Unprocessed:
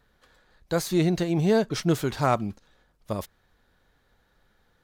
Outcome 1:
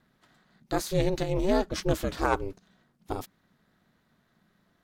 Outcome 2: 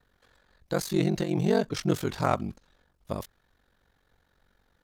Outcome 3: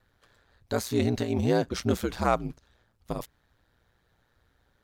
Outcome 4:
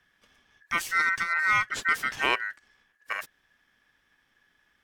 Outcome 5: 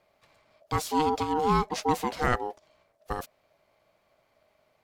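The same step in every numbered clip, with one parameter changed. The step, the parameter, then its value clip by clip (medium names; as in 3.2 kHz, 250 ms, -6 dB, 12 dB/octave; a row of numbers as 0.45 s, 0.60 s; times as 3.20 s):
ring modulator, frequency: 190 Hz, 23 Hz, 60 Hz, 1.7 kHz, 620 Hz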